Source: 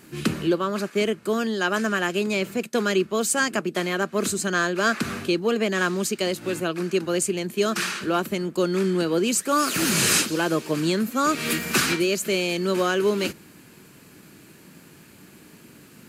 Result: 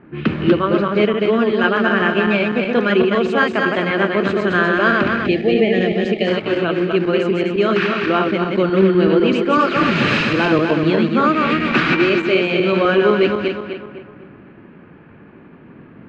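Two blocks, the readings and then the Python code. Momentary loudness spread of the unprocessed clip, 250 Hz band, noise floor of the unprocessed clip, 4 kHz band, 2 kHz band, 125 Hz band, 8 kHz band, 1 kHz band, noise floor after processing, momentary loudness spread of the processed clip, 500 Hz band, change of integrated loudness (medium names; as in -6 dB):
5 LU, +8.5 dB, -50 dBFS, +2.5 dB, +8.0 dB, +8.5 dB, under -20 dB, +8.0 dB, -43 dBFS, 4 LU, +8.5 dB, +7.5 dB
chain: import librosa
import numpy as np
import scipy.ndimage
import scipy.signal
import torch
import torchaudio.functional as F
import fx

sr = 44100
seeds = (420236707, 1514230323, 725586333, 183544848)

y = fx.reverse_delay_fb(x, sr, ms=126, feedback_pct=66, wet_db=-3.0)
y = scipy.signal.sosfilt(scipy.signal.butter(4, 3100.0, 'lowpass', fs=sr, output='sos'), y)
y = fx.env_lowpass(y, sr, base_hz=1300.0, full_db=-20.5)
y = fx.spec_box(y, sr, start_s=5.27, length_s=1.01, low_hz=850.0, high_hz=1700.0, gain_db=-22)
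y = y * librosa.db_to_amplitude(5.5)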